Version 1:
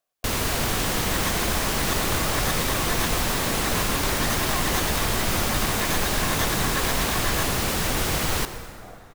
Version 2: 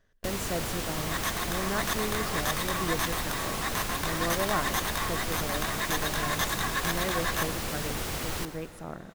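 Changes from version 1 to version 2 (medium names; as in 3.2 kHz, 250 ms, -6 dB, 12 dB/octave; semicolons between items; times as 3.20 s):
speech: remove vowel filter a; first sound -9.0 dB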